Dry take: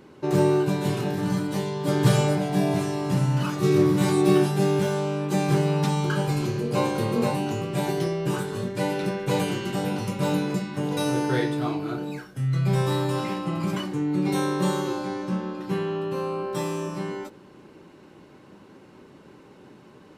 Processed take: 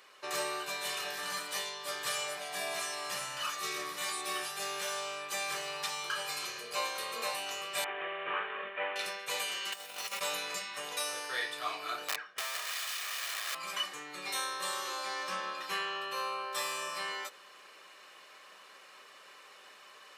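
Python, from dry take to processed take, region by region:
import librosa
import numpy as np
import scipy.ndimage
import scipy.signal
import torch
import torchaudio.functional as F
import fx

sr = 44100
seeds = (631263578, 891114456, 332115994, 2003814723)

y = fx.chain(x, sr, fx.cvsd(bps=16000),
    fx.highpass(hz=230.0, slope=12),
    fx.air_absorb(metres=350.0), at=(7.84, 8.96))
y = fx.chain(y, sr, fx.low_shelf(hz=170.0, db=-3.5),
    fx.over_compress(threshold_db=-33.0, ratio=-0.5),
    fx.quant_float(bits=2), at=(9.72, 10.21))
y = fx.chain(y, sr, fx.lowpass(hz=2600.0, slope=12),
    fx.overflow_wrap(gain_db=27.0), at=(12.08, 13.55))
y = scipy.signal.sosfilt(scipy.signal.butter(2, 1400.0, 'highpass', fs=sr, output='sos'), y)
y = y + 0.48 * np.pad(y, (int(1.7 * sr / 1000.0), 0))[:len(y)]
y = fx.rider(y, sr, range_db=10, speed_s=0.5)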